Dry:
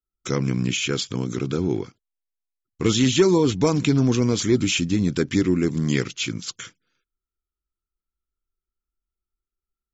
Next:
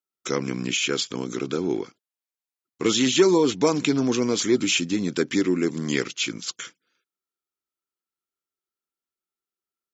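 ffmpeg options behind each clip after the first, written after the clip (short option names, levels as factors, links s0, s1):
-af "highpass=270,volume=1.12"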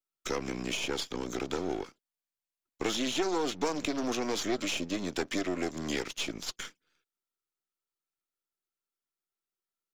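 -filter_complex "[0:a]aeval=exprs='if(lt(val(0),0),0.251*val(0),val(0))':c=same,acrossover=split=220|680|6100[s0][s1][s2][s3];[s0]acompressor=threshold=0.00708:ratio=4[s4];[s1]acompressor=threshold=0.0251:ratio=4[s5];[s2]acompressor=threshold=0.0224:ratio=4[s6];[s3]acompressor=threshold=0.00398:ratio=4[s7];[s4][s5][s6][s7]amix=inputs=4:normalize=0"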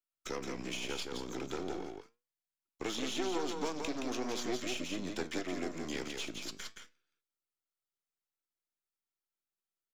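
-af "aecho=1:1:171:0.562,flanger=delay=8:depth=8.4:regen=82:speed=0.43:shape=sinusoidal,volume=0.794"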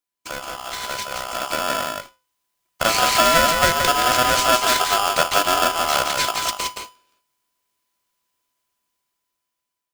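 -af "dynaudnorm=f=640:g=5:m=3.55,aeval=exprs='val(0)*sgn(sin(2*PI*1000*n/s))':c=same,volume=2.37"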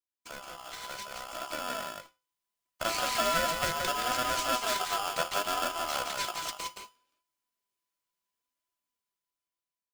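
-af "flanger=delay=2.8:depth=3.9:regen=58:speed=0.69:shape=triangular,volume=0.376"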